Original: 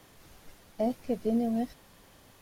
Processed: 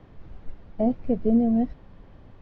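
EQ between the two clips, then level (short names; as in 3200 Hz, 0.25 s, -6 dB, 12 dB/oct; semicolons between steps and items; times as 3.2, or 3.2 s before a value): air absorption 220 m; tilt -3 dB/oct; +2.0 dB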